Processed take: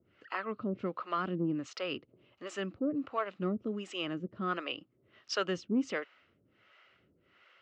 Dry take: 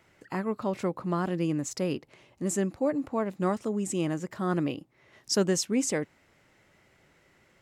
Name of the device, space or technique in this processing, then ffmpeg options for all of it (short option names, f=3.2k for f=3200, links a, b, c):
guitar amplifier with harmonic tremolo: -filter_complex "[0:a]acrossover=split=480[a][b];[a]aeval=exprs='val(0)*(1-1/2+1/2*cos(2*PI*1.4*n/s))':c=same[c];[b]aeval=exprs='val(0)*(1-1/2-1/2*cos(2*PI*1.4*n/s))':c=same[d];[c][d]amix=inputs=2:normalize=0,asoftclip=type=tanh:threshold=-19dB,highpass=82,equalizer=f=150:t=q:w=4:g=-6,equalizer=f=850:t=q:w=4:g=-7,equalizer=f=1.3k:t=q:w=4:g=9,equalizer=f=2.9k:t=q:w=4:g=9,lowpass=f=4.5k:w=0.5412,lowpass=f=4.5k:w=1.3066"